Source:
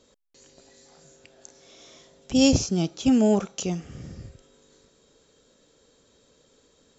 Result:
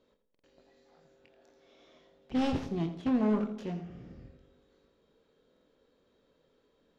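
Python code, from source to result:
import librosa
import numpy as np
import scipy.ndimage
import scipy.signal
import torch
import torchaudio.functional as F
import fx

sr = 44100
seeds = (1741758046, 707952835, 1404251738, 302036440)

y = fx.self_delay(x, sr, depth_ms=0.61)
y = fx.peak_eq(y, sr, hz=87.0, db=-5.5, octaves=1.5)
y = fx.echo_wet_lowpass(y, sr, ms=112, feedback_pct=52, hz=630.0, wet_db=-12.5)
y = np.clip(y, -10.0 ** (-16.0 / 20.0), 10.0 ** (-16.0 / 20.0))
y = scipy.signal.sosfilt(scipy.signal.cheby1(2, 1.0, 3600.0, 'lowpass', fs=sr, output='sos'), y)
y = fx.high_shelf(y, sr, hz=3000.0, db=-11.5)
y = fx.doubler(y, sr, ms=24.0, db=-8)
y = fx.echo_feedback(y, sr, ms=84, feedback_pct=28, wet_db=-12)
y = fx.buffer_glitch(y, sr, at_s=(0.3, 5.52), block=2048, repeats=2)
y = y * 10.0 ** (-6.5 / 20.0)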